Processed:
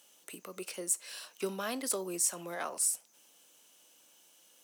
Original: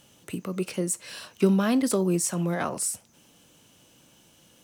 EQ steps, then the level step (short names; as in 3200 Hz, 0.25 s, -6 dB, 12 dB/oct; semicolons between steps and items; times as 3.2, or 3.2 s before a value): HPF 450 Hz 12 dB/oct; high shelf 5500 Hz +8.5 dB; -7.5 dB